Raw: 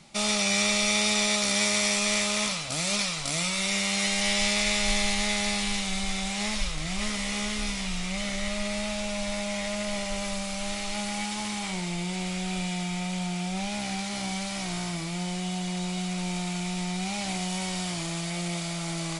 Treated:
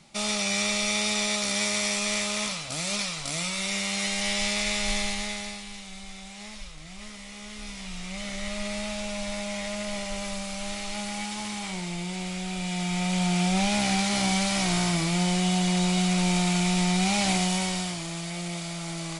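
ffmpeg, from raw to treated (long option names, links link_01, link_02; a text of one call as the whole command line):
ffmpeg -i in.wav -af "volume=17dB,afade=type=out:start_time=4.97:duration=0.66:silence=0.316228,afade=type=in:start_time=7.39:duration=1.28:silence=0.298538,afade=type=in:start_time=12.58:duration=0.83:silence=0.375837,afade=type=out:start_time=17.29:duration=0.7:silence=0.354813" out.wav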